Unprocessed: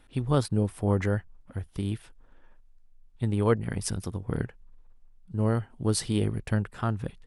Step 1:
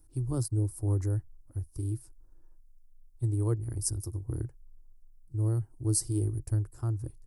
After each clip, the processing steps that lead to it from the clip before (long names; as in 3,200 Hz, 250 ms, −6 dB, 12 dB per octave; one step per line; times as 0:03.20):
drawn EQ curve 130 Hz 0 dB, 190 Hz −29 dB, 320 Hz 0 dB, 460 Hz −14 dB, 1,100 Hz −15 dB, 1,800 Hz −23 dB, 3,400 Hz −27 dB, 4,900 Hz −5 dB, 13,000 Hz +8 dB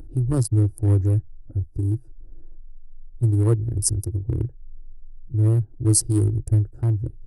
adaptive Wiener filter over 41 samples
in parallel at +1 dB: upward compression, threshold −32 dBFS
on the sum: level +3.5 dB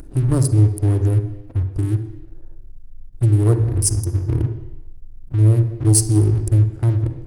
leveller curve on the samples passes 2
on a send at −8.5 dB: convolution reverb RT60 0.85 s, pre-delay 42 ms
on the sum: one half of a high-frequency compander encoder only
level −3.5 dB